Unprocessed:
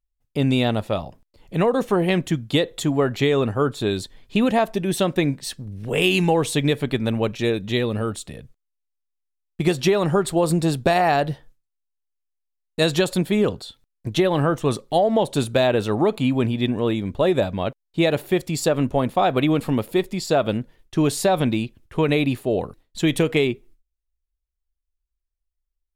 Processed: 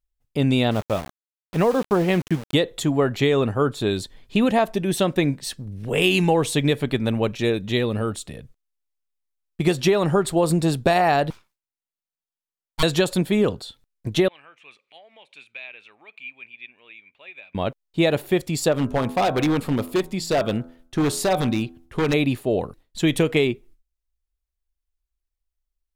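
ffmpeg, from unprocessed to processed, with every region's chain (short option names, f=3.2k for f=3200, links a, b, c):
-filter_complex "[0:a]asettb=1/sr,asplit=3[a][b][c];[a]atrim=end=0.714[d];[b]atrim=start=0.71:end=2.54,asetpts=PTS-STARTPTS,afade=t=in:d=0.004:c=qsin,afade=t=out:st=1.826:d=0.004:c=qsin,lowpass=3k,aeval=exprs='val(0)*gte(abs(val(0)),0.0299)':c=same[e];[c]atrim=start=2.536[f];[d][e]acrossfade=d=0.004:c1=hsin:c2=qsin[g];[g][f]acrossfade=d=0.004:c1=qsin:c2=hsin,asettb=1/sr,asplit=3[h][i][j];[h]atrim=end=11.304[k];[i]atrim=start=11.3:end=12.83,asetpts=PTS-STARTPTS,afade=t=in:d=0.004:c=qsin,afade=t=out:st=1.526:d=0.004:c=qsin,highpass=f=360:w=0.5412,highpass=f=360:w=1.3066,aeval=exprs='abs(val(0))':c=same[l];[j]atrim=start=12.826[m];[k][l]acrossfade=d=0.004:c1=hsin:c2=qsin[n];[n][m]acrossfade=d=0.004:c1=qsin:c2=hsin,asettb=1/sr,asplit=3[o][p][q];[o]atrim=end=14.284[r];[p]atrim=start=14.28:end=17.55,asetpts=PTS-STARTPTS,afade=t=in:d=0.004:c=qsin,afade=t=out:st=3.266:d=0.004:c=qsin,acompressor=mode=upward:threshold=-21dB:ratio=2.5:attack=3.2:release=140:knee=2.83:detection=peak,bandpass=f=2.4k:t=q:w=11[s];[q]atrim=start=17.546[t];[r][s]acrossfade=d=0.004:c1=hsin:c2=qsin[u];[u][t]acrossfade=d=0.004:c1=qsin:c2=hsin,asettb=1/sr,asplit=3[v][w][x];[v]atrim=end=18.724[y];[w]atrim=start=18.72:end=22.14,asetpts=PTS-STARTPTS,afade=t=in:d=0.004:c=qsin,afade=t=out:st=3.416:d=0.004:c=qsin,bandreject=f=83.74:t=h:w=4,bandreject=f=167.48:t=h:w=4,bandreject=f=251.22:t=h:w=4,bandreject=f=334.96:t=h:w=4,bandreject=f=418.7:t=h:w=4,bandreject=f=502.44:t=h:w=4,bandreject=f=586.18:t=h:w=4,bandreject=f=669.92:t=h:w=4,bandreject=f=753.66:t=h:w=4,bandreject=f=837.4:t=h:w=4,bandreject=f=921.14:t=h:w=4,bandreject=f=1.00488k:t=h:w=4,bandreject=f=1.08862k:t=h:w=4,bandreject=f=1.17236k:t=h:w=4,bandreject=f=1.2561k:t=h:w=4,bandreject=f=1.33984k:t=h:w=4,bandreject=f=1.42358k:t=h:w=4,bandreject=f=1.50732k:t=h:w=4,bandreject=f=1.59106k:t=h:w=4,aeval=exprs='0.2*(abs(mod(val(0)/0.2+3,4)-2)-1)':c=same[z];[x]atrim=start=22.136[aa];[y][z]acrossfade=d=0.004:c1=hsin:c2=qsin[ab];[ab][aa]acrossfade=d=0.004:c1=qsin:c2=hsin"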